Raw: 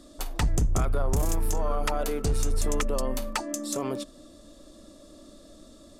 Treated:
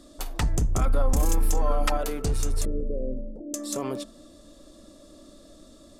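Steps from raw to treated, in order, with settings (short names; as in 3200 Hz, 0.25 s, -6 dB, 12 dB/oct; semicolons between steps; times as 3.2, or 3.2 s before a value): 0.81–1.97 comb 3.8 ms, depth 82%; 2.65–3.54 elliptic low-pass 530 Hz, stop band 50 dB; de-hum 221.3 Hz, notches 8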